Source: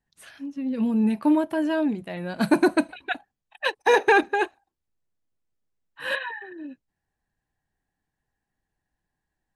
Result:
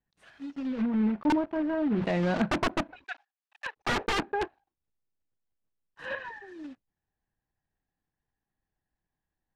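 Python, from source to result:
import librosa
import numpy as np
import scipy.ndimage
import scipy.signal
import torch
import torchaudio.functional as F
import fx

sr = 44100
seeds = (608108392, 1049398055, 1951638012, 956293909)

y = fx.block_float(x, sr, bits=3)
y = fx.env_lowpass_down(y, sr, base_hz=1900.0, full_db=-20.5)
y = fx.highpass(y, sr, hz=1200.0, slope=12, at=(3.04, 3.76))
y = fx.high_shelf(y, sr, hz=4900.0, db=-8.0, at=(6.05, 6.48))
y = (np.mod(10.0 ** (14.0 / 20.0) * y + 1.0, 2.0) - 1.0) / 10.0 ** (14.0 / 20.0)
y = fx.spacing_loss(y, sr, db_at_10k=21)
y = fx.env_flatten(y, sr, amount_pct=70, at=(1.9, 2.42), fade=0.02)
y = F.gain(torch.from_numpy(y), -4.0).numpy()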